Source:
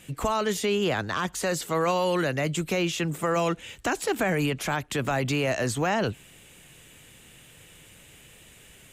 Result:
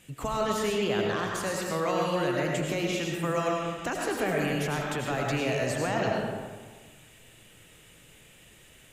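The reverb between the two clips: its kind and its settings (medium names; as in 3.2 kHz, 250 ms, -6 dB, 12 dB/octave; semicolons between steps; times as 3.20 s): algorithmic reverb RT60 1.5 s, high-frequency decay 0.55×, pre-delay 60 ms, DRR -1.5 dB; trim -6 dB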